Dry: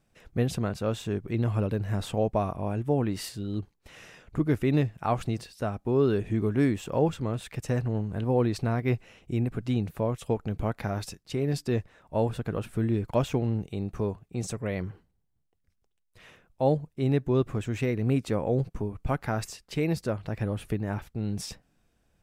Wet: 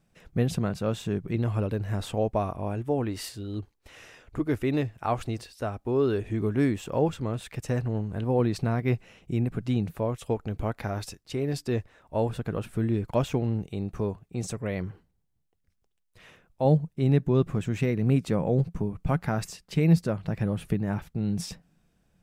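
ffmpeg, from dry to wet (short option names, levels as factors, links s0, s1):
-af "asetnsamples=n=441:p=0,asendcmd='1.36 equalizer g -3.5;2.75 equalizer g -11.5;6.4 equalizer g -1;8.39 equalizer g 5.5;9.95 equalizer g -5;12.29 equalizer g 1.5;16.65 equalizer g 11.5',equalizer=f=170:t=o:w=0.44:g=7"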